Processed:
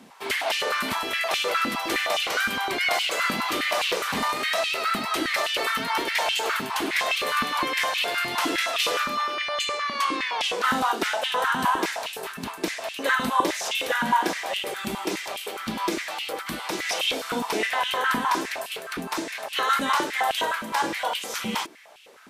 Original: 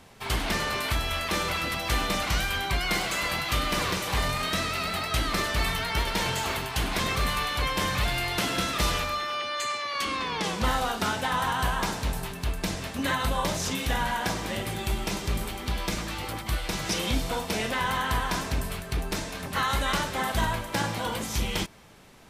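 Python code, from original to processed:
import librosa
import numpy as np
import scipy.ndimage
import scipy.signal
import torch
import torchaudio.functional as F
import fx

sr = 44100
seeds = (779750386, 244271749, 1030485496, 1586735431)

y = fx.filter_held_highpass(x, sr, hz=9.7, low_hz=230.0, high_hz=2800.0)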